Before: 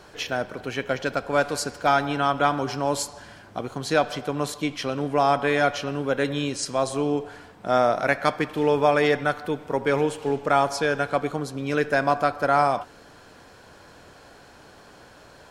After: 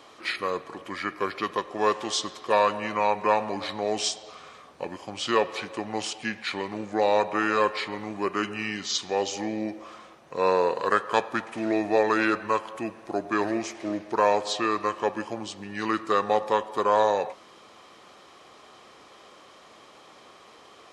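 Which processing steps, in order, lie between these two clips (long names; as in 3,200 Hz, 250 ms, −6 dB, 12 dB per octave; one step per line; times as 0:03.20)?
high-pass filter 880 Hz 6 dB per octave
wrong playback speed 45 rpm record played at 33 rpm
level +1.5 dB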